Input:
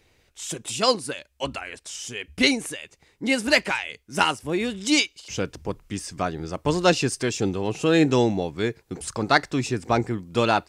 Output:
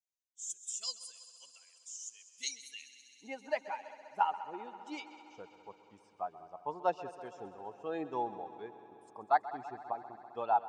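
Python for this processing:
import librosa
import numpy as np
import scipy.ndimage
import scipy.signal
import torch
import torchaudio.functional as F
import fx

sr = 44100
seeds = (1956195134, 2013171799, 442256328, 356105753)

p1 = fx.bin_expand(x, sr, power=1.5)
p2 = fx.level_steps(p1, sr, step_db=16, at=(9.91, 10.33), fade=0.02)
p3 = fx.filter_sweep_bandpass(p2, sr, from_hz=6800.0, to_hz=820.0, start_s=2.47, end_s=3.17, q=4.9)
y = p3 + fx.echo_heads(p3, sr, ms=66, heads='second and third', feedback_pct=73, wet_db=-16.5, dry=0)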